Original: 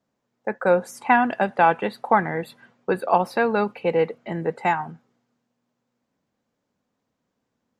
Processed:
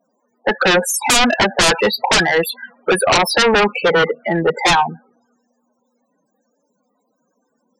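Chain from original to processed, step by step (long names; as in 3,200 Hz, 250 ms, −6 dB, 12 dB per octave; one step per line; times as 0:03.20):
RIAA equalisation recording
spectral peaks only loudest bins 16
sine wavefolder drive 17 dB, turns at −6 dBFS
level −3 dB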